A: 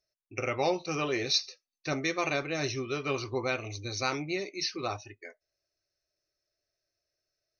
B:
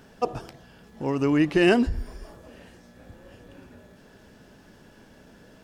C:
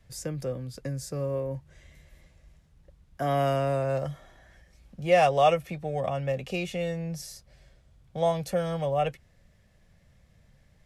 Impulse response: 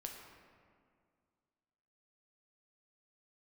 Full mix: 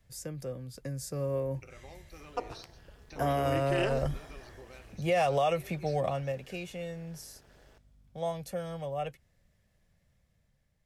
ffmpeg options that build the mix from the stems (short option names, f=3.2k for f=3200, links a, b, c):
-filter_complex "[0:a]acompressor=threshold=-39dB:ratio=6,aeval=exprs='val(0)+0.00224*(sin(2*PI*50*n/s)+sin(2*PI*2*50*n/s)/2+sin(2*PI*3*50*n/s)/3+sin(2*PI*4*50*n/s)/4+sin(2*PI*5*50*n/s)/5)':c=same,adelay=1250,volume=-17.5dB[a];[1:a]tremolo=f=210:d=0.947,equalizer=f=200:t=o:w=1:g=-12,adelay=2150,volume=-10dB[b];[2:a]highshelf=f=10k:g=8.5,volume=-6.5dB,afade=t=out:st=5.93:d=0.49:silence=0.354813[c];[a][b][c]amix=inputs=3:normalize=0,dynaudnorm=f=350:g=7:m=7dB,alimiter=limit=-19dB:level=0:latency=1:release=78"